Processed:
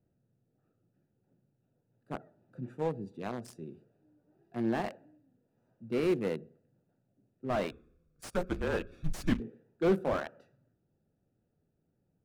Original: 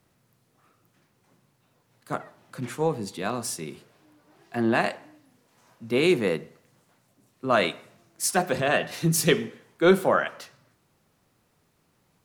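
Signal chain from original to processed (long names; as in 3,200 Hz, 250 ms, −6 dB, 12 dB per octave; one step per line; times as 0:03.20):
adaptive Wiener filter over 41 samples
0:07.71–0:09.40: frequency shifter −180 Hz
slew-rate limiting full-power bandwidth 72 Hz
level −6.5 dB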